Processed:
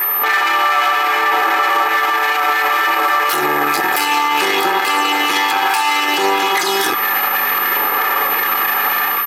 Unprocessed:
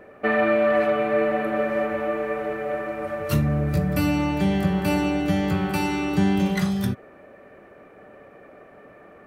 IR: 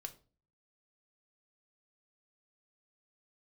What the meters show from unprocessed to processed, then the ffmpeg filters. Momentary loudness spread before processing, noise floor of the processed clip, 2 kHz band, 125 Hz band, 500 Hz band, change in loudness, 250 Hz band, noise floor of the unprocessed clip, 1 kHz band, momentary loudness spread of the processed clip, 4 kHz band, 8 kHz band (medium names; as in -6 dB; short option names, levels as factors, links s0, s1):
8 LU, -18 dBFS, +16.0 dB, under -15 dB, 0.0 dB, +9.0 dB, -5.0 dB, -49 dBFS, +17.0 dB, 1 LU, +19.5 dB, +17.5 dB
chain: -af "aphaser=in_gain=1:out_gain=1:delay=1.3:decay=0.38:speed=0.62:type=sinusoidal,aeval=exprs='max(val(0),0)':c=same,aeval=exprs='val(0)+0.01*(sin(2*PI*50*n/s)+sin(2*PI*2*50*n/s)/2+sin(2*PI*3*50*n/s)/3+sin(2*PI*4*50*n/s)/4+sin(2*PI*5*50*n/s)/5)':c=same,highpass=f=270:w=0.5412,highpass=f=270:w=1.3066,lowshelf=f=710:t=q:w=1.5:g=-12.5,dynaudnorm=f=150:g=3:m=6.31,aeval=exprs='val(0)+0.00708*sin(2*PI*13000*n/s)':c=same,equalizer=f=8200:t=o:w=1.6:g=2,acompressor=threshold=0.0355:ratio=6,aecho=1:1:2.4:0.83,alimiter=level_in=23.7:limit=0.891:release=50:level=0:latency=1,volume=0.531"